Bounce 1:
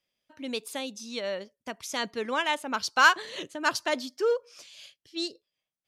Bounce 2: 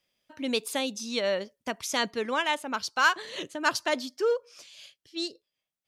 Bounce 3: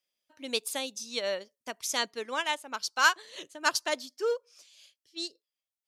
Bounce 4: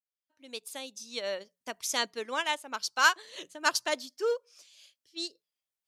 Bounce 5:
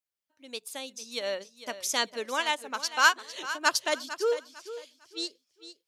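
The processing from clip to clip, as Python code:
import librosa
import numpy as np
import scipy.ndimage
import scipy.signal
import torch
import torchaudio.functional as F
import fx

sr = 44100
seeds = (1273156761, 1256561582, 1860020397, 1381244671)

y1 = fx.rider(x, sr, range_db=5, speed_s=0.5)
y2 = fx.bass_treble(y1, sr, bass_db=-8, treble_db=7)
y2 = fx.upward_expand(y2, sr, threshold_db=-40.0, expansion=1.5)
y3 = fx.fade_in_head(y2, sr, length_s=1.74)
y3 = fx.hum_notches(y3, sr, base_hz=60, count=3)
y4 = fx.echo_feedback(y3, sr, ms=452, feedback_pct=28, wet_db=-13.5)
y4 = F.gain(torch.from_numpy(y4), 2.0).numpy()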